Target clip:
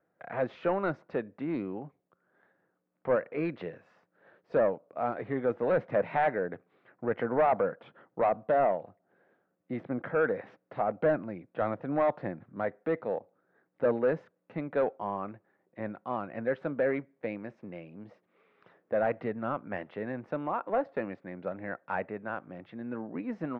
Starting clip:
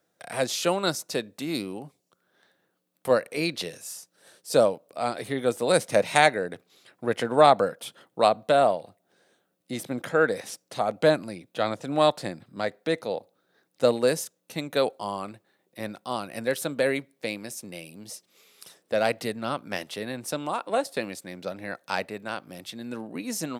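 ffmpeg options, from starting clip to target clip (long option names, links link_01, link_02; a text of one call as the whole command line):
ffmpeg -i in.wav -af "asoftclip=type=tanh:threshold=-18dB,lowpass=frequency=1900:width=0.5412,lowpass=frequency=1900:width=1.3066,volume=-1.5dB" out.wav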